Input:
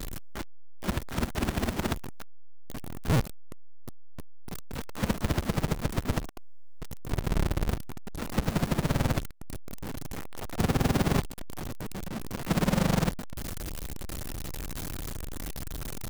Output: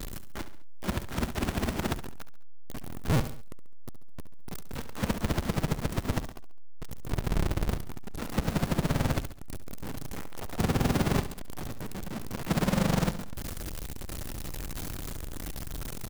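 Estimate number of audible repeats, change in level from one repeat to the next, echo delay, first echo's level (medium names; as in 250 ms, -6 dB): 3, -6.5 dB, 69 ms, -12.5 dB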